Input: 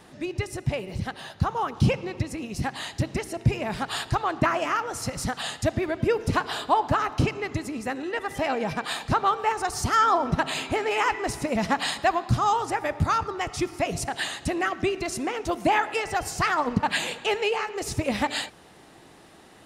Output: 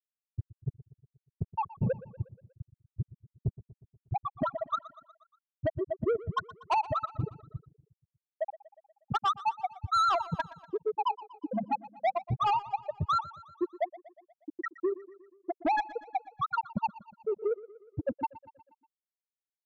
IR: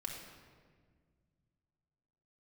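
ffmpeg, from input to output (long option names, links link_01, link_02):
-filter_complex "[0:a]afftfilt=real='re*gte(hypot(re,im),0.631)':imag='im*gte(hypot(re,im),0.631)':win_size=1024:overlap=0.75,lowshelf=frequency=210:gain=-11.5,asplit=2[link_01][link_02];[link_02]acompressor=threshold=-35dB:ratio=6,volume=2dB[link_03];[link_01][link_03]amix=inputs=2:normalize=0,asoftclip=type=tanh:threshold=-22.5dB,aecho=1:1:120|240|360|480|600:0.126|0.0718|0.0409|0.0233|0.0133"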